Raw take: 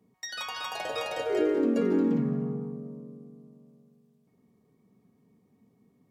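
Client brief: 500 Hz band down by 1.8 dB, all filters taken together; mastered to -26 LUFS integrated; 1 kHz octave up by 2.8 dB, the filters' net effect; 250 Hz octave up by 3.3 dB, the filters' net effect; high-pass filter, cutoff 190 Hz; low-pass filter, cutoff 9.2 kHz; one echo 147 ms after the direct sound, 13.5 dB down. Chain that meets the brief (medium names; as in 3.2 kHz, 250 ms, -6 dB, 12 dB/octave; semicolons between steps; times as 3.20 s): high-pass 190 Hz; low-pass 9.2 kHz; peaking EQ 250 Hz +6.5 dB; peaking EQ 500 Hz -5.5 dB; peaking EQ 1 kHz +5 dB; delay 147 ms -13.5 dB; trim +1.5 dB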